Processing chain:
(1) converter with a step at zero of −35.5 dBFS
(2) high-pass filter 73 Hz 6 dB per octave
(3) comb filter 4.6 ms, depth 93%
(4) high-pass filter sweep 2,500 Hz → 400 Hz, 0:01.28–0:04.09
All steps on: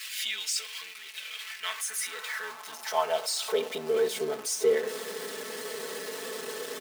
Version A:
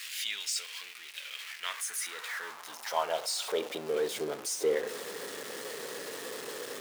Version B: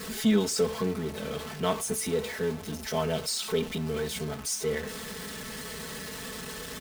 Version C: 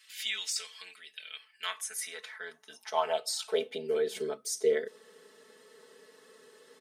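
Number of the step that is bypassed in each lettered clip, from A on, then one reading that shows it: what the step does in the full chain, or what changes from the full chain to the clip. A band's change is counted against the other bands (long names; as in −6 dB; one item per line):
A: 3, 500 Hz band −1.5 dB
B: 4, 125 Hz band +22.5 dB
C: 1, distortion level −8 dB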